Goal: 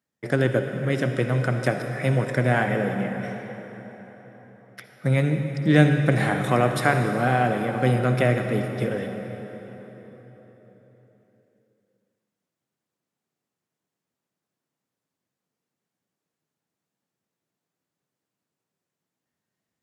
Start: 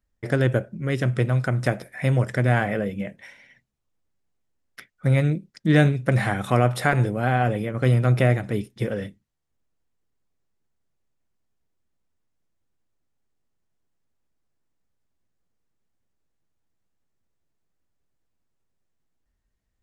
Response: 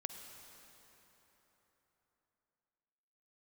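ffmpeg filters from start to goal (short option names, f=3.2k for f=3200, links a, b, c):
-filter_complex "[0:a]highpass=f=130:w=0.5412,highpass=f=130:w=1.3066[a];[1:a]atrim=start_sample=2205,asetrate=39249,aresample=44100[b];[a][b]afir=irnorm=-1:irlink=0,volume=2.5dB"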